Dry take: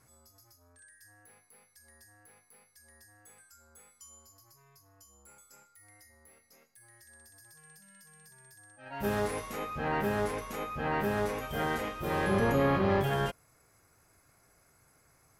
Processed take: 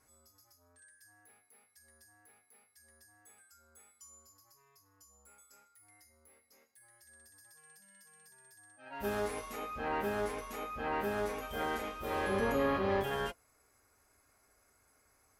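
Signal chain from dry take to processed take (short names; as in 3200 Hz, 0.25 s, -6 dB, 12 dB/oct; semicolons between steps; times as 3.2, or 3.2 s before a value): bell 130 Hz -11.5 dB 0.91 oct; notch comb 170 Hz; gain -2.5 dB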